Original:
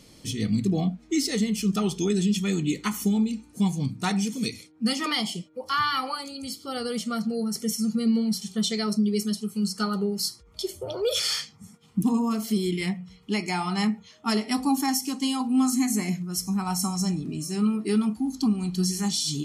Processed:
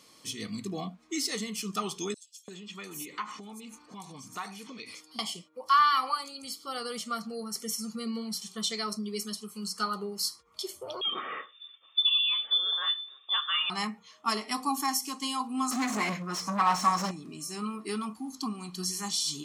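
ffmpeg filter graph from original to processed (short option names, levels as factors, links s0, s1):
-filter_complex "[0:a]asettb=1/sr,asplit=3[s0][s1][s2];[s0]atrim=end=2.144[s3];[s1]atrim=start=2.14:end=5.19,asetpts=PTS-STARTPTS,afade=t=in:d=0.004:c=qsin,afade=t=out:st=3.046:d=0.004:c=qsin,equalizer=f=1100:w=0.3:g=8.5,acompressor=threshold=0.0316:ratio=16:attack=3.2:release=140:knee=1:detection=peak,acrossover=split=5000[s4][s5];[s4]adelay=340[s6];[s6][s5]amix=inputs=2:normalize=0,atrim=end_sample=134505[s7];[s2]atrim=start=5.186[s8];[s3][s7]acrossfade=d=0.004:c1=hsin:c2=qsin[s9];[s9][s8]acrossfade=d=0.004:c1=qsin:c2=hsin,asettb=1/sr,asplit=3[s10][s11][s12];[s10]atrim=end=11.014[s13];[s11]atrim=start=11.01:end=13.7,asetpts=PTS-STARTPTS,afade=t=in:d=0.004:c=qsin,afade=t=out:st=2.686:d=0.004:c=qsin,aecho=1:1:1.2:0.4,atrim=end_sample=118629,lowpass=f=3100:t=q:w=0.5098,lowpass=f=3100:t=q:w=0.6013,lowpass=f=3100:t=q:w=0.9,lowpass=f=3100:t=q:w=2.563,afreqshift=-3700[s14];[s12]atrim=start=13.696[s15];[s13][s14]acrossfade=d=0.004:c1=hsin:c2=qsin[s16];[s16][s15]acrossfade=d=0.004:c1=qsin:c2=hsin,asettb=1/sr,asplit=3[s17][s18][s19];[s17]atrim=end=15.714[s20];[s18]atrim=start=15.71:end=17.11,asetpts=PTS-STARTPTS,afade=t=in:d=0.004:c=qsin,afade=t=out:st=1.396:d=0.004:c=qsin,acrossover=split=7500[s21][s22];[s22]acompressor=threshold=0.00708:ratio=4:attack=1:release=60[s23];[s21][s23]amix=inputs=2:normalize=0,bass=f=250:g=4,treble=f=4000:g=-3,asplit=2[s24][s25];[s25]highpass=f=720:p=1,volume=17.8,asoftclip=type=tanh:threshold=0.224[s26];[s24][s26]amix=inputs=2:normalize=0,lowpass=f=1700:p=1,volume=0.501[s27];[s19]atrim=start=17.106[s28];[s20][s27]acrossfade=d=0.004:c1=hsin:c2=qsin[s29];[s29][s28]acrossfade=d=0.004:c1=qsin:c2=hsin,highpass=f=670:p=1,equalizer=f=1100:w=5.5:g=12,volume=0.75"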